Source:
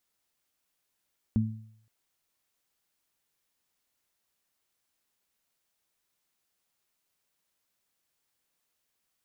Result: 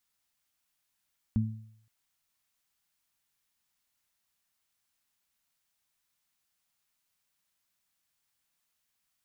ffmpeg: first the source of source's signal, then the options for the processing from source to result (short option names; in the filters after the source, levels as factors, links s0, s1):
-f lavfi -i "aevalsrc='0.0708*pow(10,-3*t/0.7)*sin(2*PI*110*t)+0.0891*pow(10,-3*t/0.47)*sin(2*PI*220*t)':d=0.52:s=44100"
-af "equalizer=f=430:w=1.2:g=-9.5"